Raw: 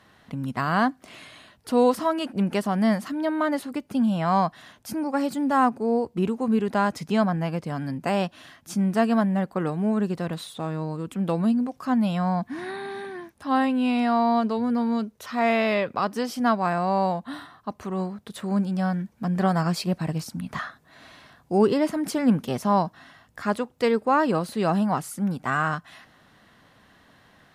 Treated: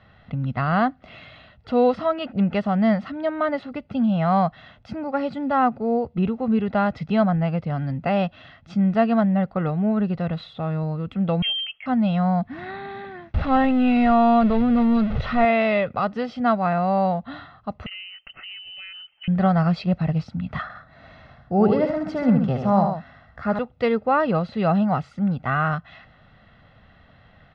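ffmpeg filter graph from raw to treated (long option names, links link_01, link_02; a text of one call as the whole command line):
ffmpeg -i in.wav -filter_complex "[0:a]asettb=1/sr,asplit=3[link_01][link_02][link_03];[link_01]atrim=end=11.424[link_04];[link_02]atrim=start=11.42:end=11.86,asetpts=PTS-STARTPTS,afade=type=in:duration=0.004:curve=qsin,afade=type=out:start_time=0.436:duration=0.004:curve=qsin,highpass=frequency=290:poles=1,lowpass=frequency=2900:width_type=q:width=0.5098,lowpass=frequency=2900:width_type=q:width=0.6013,lowpass=frequency=2900:width_type=q:width=0.9,lowpass=frequency=2900:width_type=q:width=2.563,afreqshift=-3400[link_05];[link_03]atrim=start=11.856[link_06];[link_04][link_05]acrossfade=duration=0.004:curve1=hsin:curve2=qsin[link_07];[link_07][link_06]acrossfade=duration=0.004:curve1=qsin:curve2=hsin,asettb=1/sr,asplit=3[link_08][link_09][link_10];[link_08]atrim=end=13.344[link_11];[link_09]atrim=start=13.34:end=15.45,asetpts=PTS-STARTPTS,afade=type=in:duration=0.004:curve=qsin,afade=type=out:start_time=2.106:duration=0.004:curve=qsin,aeval=exprs='val(0)+0.5*0.0422*sgn(val(0))':channel_layout=same,lowpass=4200,lowshelf=frequency=170:gain=8.5[link_12];[link_10]atrim=start=15.446[link_13];[link_11][link_12]acrossfade=duration=0.004:curve1=hsin:curve2=qsin[link_14];[link_14][link_13]acrossfade=duration=0.004:curve1=qsin:curve2=hsin,asettb=1/sr,asplit=3[link_15][link_16][link_17];[link_15]atrim=end=17.864[link_18];[link_16]atrim=start=17.86:end=19.28,asetpts=PTS-STARTPTS,afade=type=in:duration=0.004:curve=qsin,afade=type=out:start_time=1.416:duration=0.004:curve=qsin,lowpass=frequency=2700:width_type=q:width=0.5098,lowpass=frequency=2700:width_type=q:width=0.6013,lowpass=frequency=2700:width_type=q:width=0.9,lowpass=frequency=2700:width_type=q:width=2.563,afreqshift=-3200,bandreject=frequency=1400:width=26,acompressor=threshold=-31dB:ratio=10:attack=3.2:release=140:knee=1:detection=peak[link_19];[link_17]atrim=start=19.276[link_20];[link_18][link_19]acrossfade=duration=0.004:curve1=hsin:curve2=qsin[link_21];[link_21][link_20]acrossfade=duration=0.004:curve1=qsin:curve2=hsin,asettb=1/sr,asplit=3[link_22][link_23][link_24];[link_22]atrim=end=20.624[link_25];[link_23]atrim=start=20.62:end=23.59,asetpts=PTS-STARTPTS,afade=type=in:duration=0.004:curve=qsin,afade=type=out:start_time=2.966:duration=0.004:curve=qsin,equalizer=frequency=3100:width=1.4:gain=-7.5,aecho=1:1:75|133:0.501|0.376,atrim=end_sample=130977[link_26];[link_24]atrim=start=23.586[link_27];[link_25][link_26]acrossfade=duration=0.004:curve1=hsin:curve2=qsin[link_28];[link_28][link_27]acrossfade=duration=0.004:curve1=qsin:curve2=hsin,lowpass=frequency=3700:width=0.5412,lowpass=frequency=3700:width=1.3066,lowshelf=frequency=130:gain=11.5,aecho=1:1:1.5:0.5" out.wav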